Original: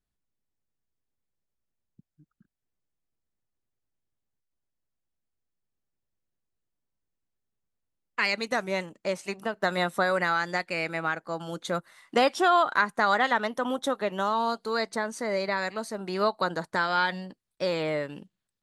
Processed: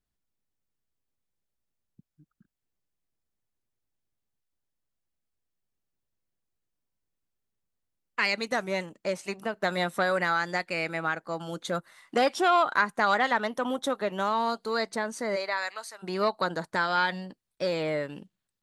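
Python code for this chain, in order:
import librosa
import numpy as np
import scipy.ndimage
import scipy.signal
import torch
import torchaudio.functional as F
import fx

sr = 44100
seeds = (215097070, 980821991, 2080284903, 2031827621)

y = fx.highpass(x, sr, hz=fx.line((15.35, 470.0), (16.02, 1500.0)), slope=12, at=(15.35, 16.02), fade=0.02)
y = fx.transformer_sat(y, sr, knee_hz=760.0)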